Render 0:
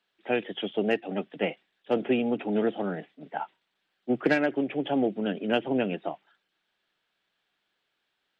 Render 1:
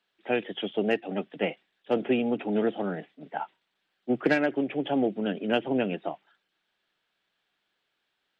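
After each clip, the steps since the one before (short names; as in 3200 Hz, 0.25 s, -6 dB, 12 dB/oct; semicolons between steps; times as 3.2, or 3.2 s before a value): nothing audible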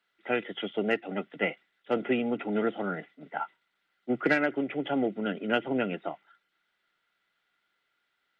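small resonant body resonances 1400/2000 Hz, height 14 dB, ringing for 30 ms; gain -2.5 dB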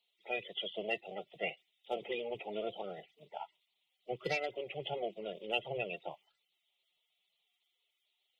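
bin magnitudes rounded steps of 30 dB; resonant high shelf 2100 Hz +8 dB, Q 1.5; fixed phaser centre 640 Hz, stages 4; gain -5.5 dB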